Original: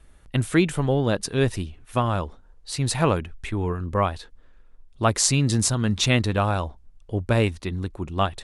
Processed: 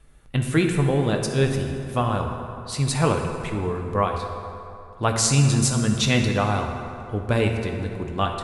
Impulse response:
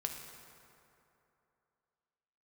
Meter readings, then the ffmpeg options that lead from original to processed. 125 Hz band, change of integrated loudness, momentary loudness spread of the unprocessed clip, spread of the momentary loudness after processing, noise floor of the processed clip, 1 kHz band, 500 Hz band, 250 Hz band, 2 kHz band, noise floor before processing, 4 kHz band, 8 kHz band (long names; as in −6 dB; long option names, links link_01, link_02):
+1.5 dB, +0.5 dB, 11 LU, 12 LU, −43 dBFS, +1.0 dB, +1.0 dB, +1.0 dB, +0.5 dB, −51 dBFS, 0.0 dB, 0.0 dB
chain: -filter_complex "[1:a]atrim=start_sample=2205[link_01];[0:a][link_01]afir=irnorm=-1:irlink=0"